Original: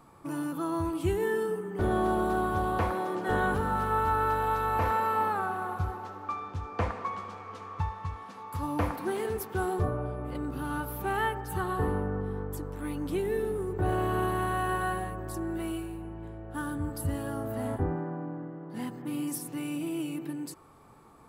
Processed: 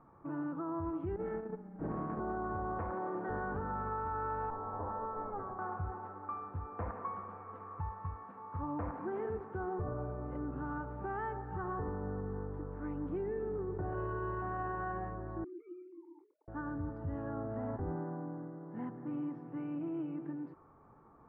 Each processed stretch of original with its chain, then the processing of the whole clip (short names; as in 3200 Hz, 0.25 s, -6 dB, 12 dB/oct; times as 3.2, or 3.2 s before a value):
1.16–2.2 minimum comb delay 6.4 ms + bell 210 Hz +12.5 dB 1.4 oct + gate -26 dBFS, range -14 dB
4.5–5.59 minimum comb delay 9.8 ms + LPF 1100 Hz 24 dB/oct + bell 130 Hz -6.5 dB 1.5 oct
13.94–14.42 tone controls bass 0 dB, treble +7 dB + comb 2 ms, depth 86%
15.44–16.48 sine-wave speech + vowel filter u + doubler 27 ms -11 dB
whole clip: LPF 1600 Hz 24 dB/oct; limiter -25 dBFS; gain -5 dB